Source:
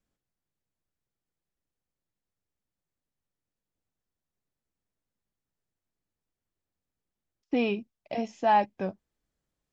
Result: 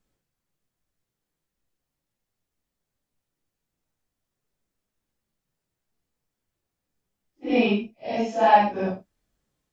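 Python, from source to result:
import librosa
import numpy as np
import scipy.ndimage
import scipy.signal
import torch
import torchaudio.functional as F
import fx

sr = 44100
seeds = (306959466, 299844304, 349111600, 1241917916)

y = fx.phase_scramble(x, sr, seeds[0], window_ms=200)
y = y * librosa.db_to_amplitude(7.0)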